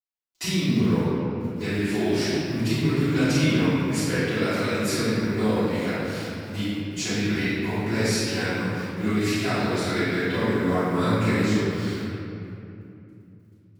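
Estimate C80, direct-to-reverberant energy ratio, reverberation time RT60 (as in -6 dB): -3.0 dB, -21.5 dB, 2.8 s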